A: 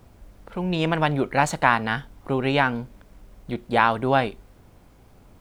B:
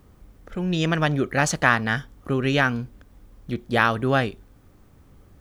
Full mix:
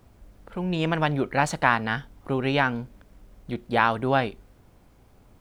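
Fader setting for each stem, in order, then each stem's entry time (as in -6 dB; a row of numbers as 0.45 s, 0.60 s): -4.0 dB, -15.0 dB; 0.00 s, 0.00 s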